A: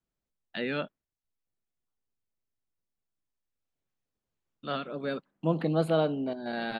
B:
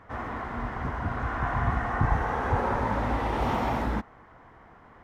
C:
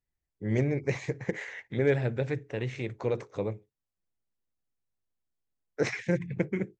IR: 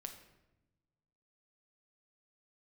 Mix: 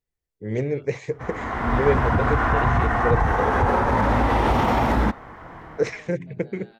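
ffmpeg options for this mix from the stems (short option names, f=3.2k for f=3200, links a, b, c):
-filter_complex "[0:a]alimiter=level_in=1.5dB:limit=-24dB:level=0:latency=1,volume=-1.5dB,volume=-17.5dB[a];[1:a]dynaudnorm=f=100:g=9:m=13dB,alimiter=limit=-10dB:level=0:latency=1:release=41,adelay=1100,volume=-1dB[b];[2:a]equalizer=f=460:t=o:w=0.33:g=9,volume=0dB[c];[a][b][c]amix=inputs=3:normalize=0"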